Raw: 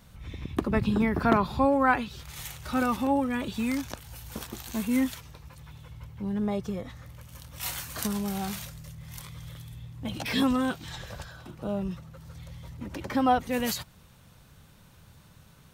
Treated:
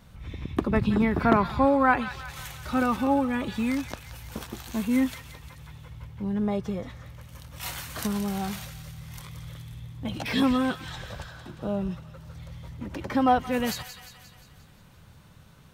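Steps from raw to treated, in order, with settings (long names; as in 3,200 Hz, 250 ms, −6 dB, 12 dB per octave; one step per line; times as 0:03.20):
high-shelf EQ 4,600 Hz −6.5 dB
delay with a high-pass on its return 176 ms, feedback 57%, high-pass 1,500 Hz, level −9.5 dB
level +2 dB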